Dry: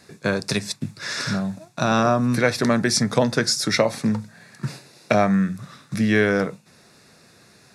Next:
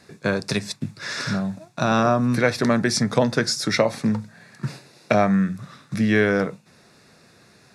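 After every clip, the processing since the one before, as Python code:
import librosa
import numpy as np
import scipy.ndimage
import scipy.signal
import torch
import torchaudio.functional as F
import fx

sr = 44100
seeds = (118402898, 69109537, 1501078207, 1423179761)

y = fx.high_shelf(x, sr, hz=5600.0, db=-5.5)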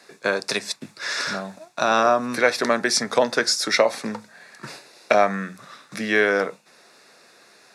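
y = scipy.signal.sosfilt(scipy.signal.butter(2, 430.0, 'highpass', fs=sr, output='sos'), x)
y = F.gain(torch.from_numpy(y), 3.0).numpy()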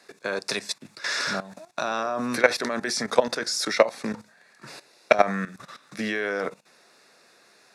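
y = fx.level_steps(x, sr, step_db=15)
y = F.gain(torch.from_numpy(y), 2.5).numpy()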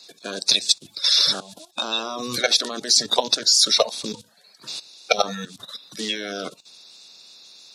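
y = fx.spec_quant(x, sr, step_db=30)
y = fx.high_shelf_res(y, sr, hz=2600.0, db=10.5, q=3.0)
y = F.gain(torch.from_numpy(y), -1.0).numpy()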